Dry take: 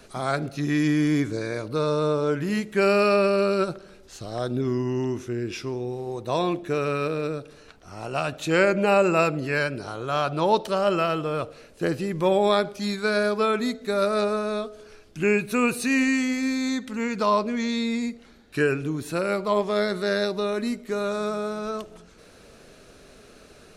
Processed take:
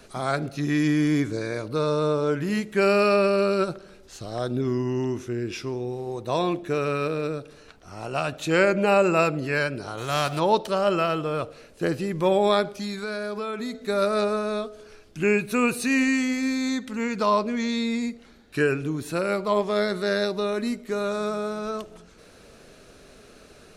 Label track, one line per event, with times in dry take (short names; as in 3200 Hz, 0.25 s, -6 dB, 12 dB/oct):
9.970000	10.380000	spectral whitening exponent 0.6
12.750000	13.840000	compressor, threshold -27 dBFS